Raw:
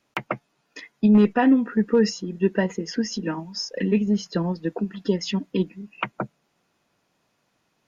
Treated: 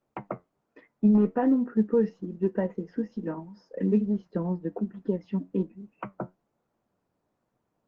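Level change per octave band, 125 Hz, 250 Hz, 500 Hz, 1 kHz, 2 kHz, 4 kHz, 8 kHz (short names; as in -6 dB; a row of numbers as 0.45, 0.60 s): -4.5 dB, -4.5 dB, -4.5 dB, -7.5 dB, -15.0 dB, under -25 dB, n/a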